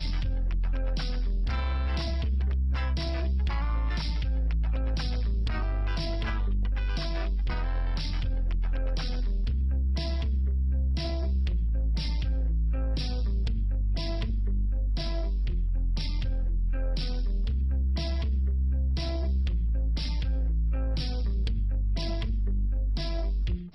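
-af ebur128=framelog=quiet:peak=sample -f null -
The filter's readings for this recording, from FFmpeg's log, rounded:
Integrated loudness:
  I:         -30.1 LUFS
  Threshold: -40.1 LUFS
Loudness range:
  LRA:         1.7 LU
  Threshold: -50.0 LUFS
  LRA low:   -30.9 LUFS
  LRA high:  -29.2 LUFS
Sample peak:
  Peak:      -21.5 dBFS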